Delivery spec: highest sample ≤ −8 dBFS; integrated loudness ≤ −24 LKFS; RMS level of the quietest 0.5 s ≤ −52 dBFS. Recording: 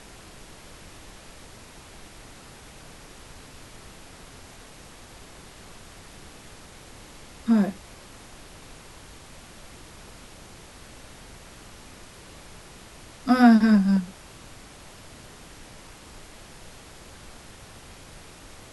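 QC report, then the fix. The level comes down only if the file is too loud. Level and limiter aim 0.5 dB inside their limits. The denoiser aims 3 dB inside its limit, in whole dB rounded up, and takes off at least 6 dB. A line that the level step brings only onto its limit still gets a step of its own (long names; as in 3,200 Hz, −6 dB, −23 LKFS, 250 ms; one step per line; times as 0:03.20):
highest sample −4.0 dBFS: out of spec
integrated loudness −20.5 LKFS: out of spec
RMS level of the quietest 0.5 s −46 dBFS: out of spec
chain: broadband denoise 6 dB, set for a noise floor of −46 dBFS
level −4 dB
brickwall limiter −8.5 dBFS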